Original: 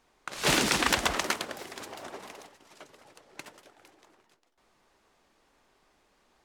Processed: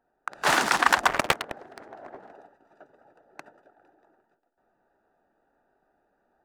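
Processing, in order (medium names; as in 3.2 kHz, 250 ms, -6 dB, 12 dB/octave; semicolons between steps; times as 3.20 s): local Wiener filter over 41 samples; high-order bell 1.1 kHz +10 dB; gain riding 2 s; bass shelf 150 Hz -11.5 dB; 1.07–2.32 s: loudspeaker Doppler distortion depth 0.93 ms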